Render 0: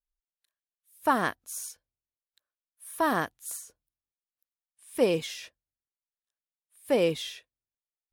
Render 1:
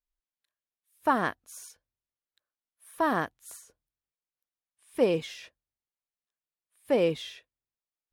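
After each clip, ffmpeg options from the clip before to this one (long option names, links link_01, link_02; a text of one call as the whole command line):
ffmpeg -i in.wav -af "highshelf=frequency=4700:gain=-10.5" out.wav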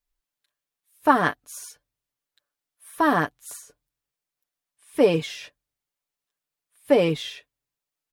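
ffmpeg -i in.wav -af "aecho=1:1:6.9:0.57,volume=5.5dB" out.wav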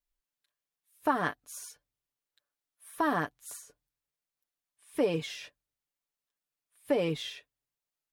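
ffmpeg -i in.wav -af "acompressor=threshold=-22dB:ratio=2,volume=-5dB" out.wav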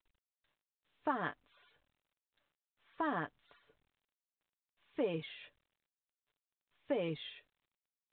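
ffmpeg -i in.wav -af "volume=-7.5dB" -ar 8000 -c:a pcm_mulaw out.wav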